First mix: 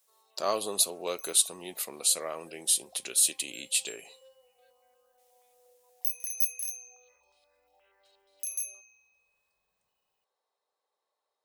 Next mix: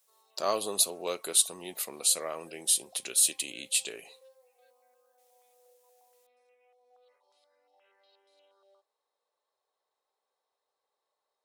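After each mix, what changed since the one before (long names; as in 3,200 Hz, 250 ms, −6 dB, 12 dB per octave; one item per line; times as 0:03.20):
second sound: muted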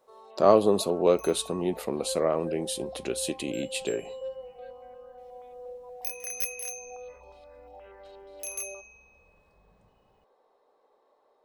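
speech −9.5 dB
second sound: unmuted
master: remove first-order pre-emphasis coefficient 0.97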